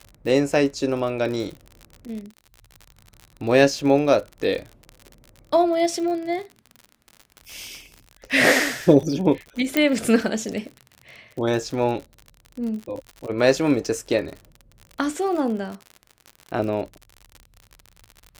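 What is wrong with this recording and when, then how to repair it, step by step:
crackle 58/s -30 dBFS
9.77 pop -6 dBFS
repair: de-click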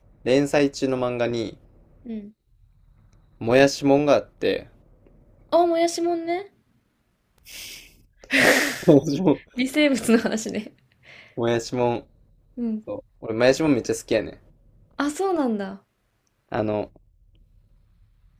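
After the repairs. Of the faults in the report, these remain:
none

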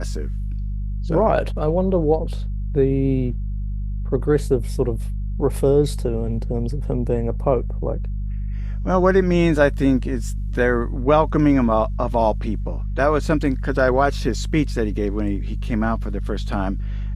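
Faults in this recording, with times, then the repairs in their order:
hum 50 Hz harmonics 4 -25 dBFS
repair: de-hum 50 Hz, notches 4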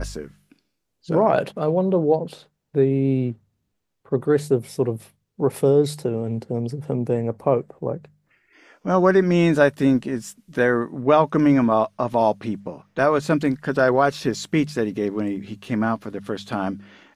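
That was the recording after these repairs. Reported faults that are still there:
none

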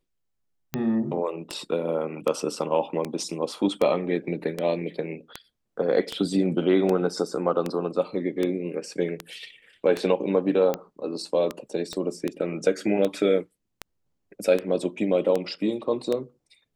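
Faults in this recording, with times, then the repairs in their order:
tick 78 rpm -13 dBFS
11.93 pop -19 dBFS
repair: de-click

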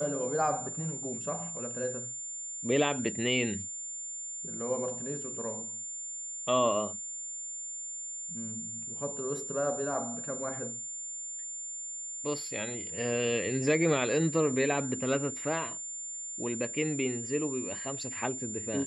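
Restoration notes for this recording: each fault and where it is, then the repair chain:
tone 7200 Hz -37 dBFS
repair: notch 7200 Hz, Q 30

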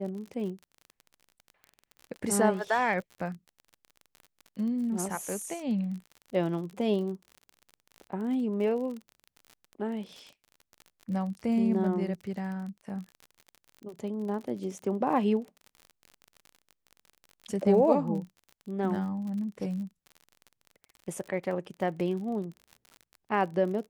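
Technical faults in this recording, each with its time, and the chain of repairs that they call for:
crackle 42/s -38 dBFS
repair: de-click

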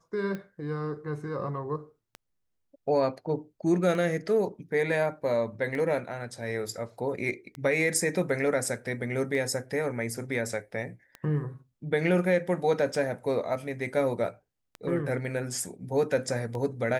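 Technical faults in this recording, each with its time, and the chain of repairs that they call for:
tick 33 1/3 rpm -24 dBFS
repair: de-click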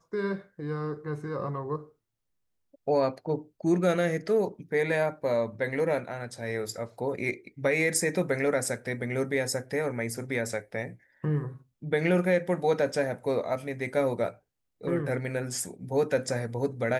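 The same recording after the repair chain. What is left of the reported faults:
none

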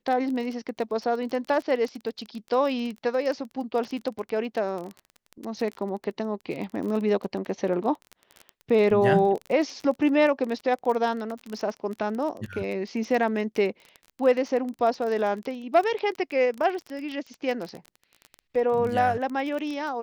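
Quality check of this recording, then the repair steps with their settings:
crackle 23/s -30 dBFS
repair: de-click

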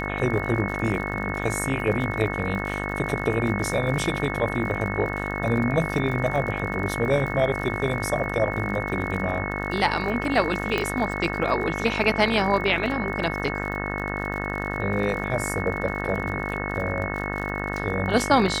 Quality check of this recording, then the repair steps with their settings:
buzz 50 Hz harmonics 38 -30 dBFS
crackle 54/s -32 dBFS
tone 2200 Hz -32 dBFS
10.78 pop -11 dBFS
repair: de-click; notch 2200 Hz, Q 30; de-hum 50 Hz, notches 38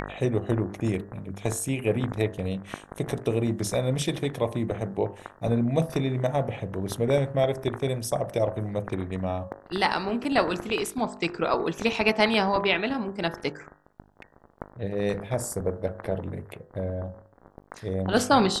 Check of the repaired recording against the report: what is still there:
10.78 pop

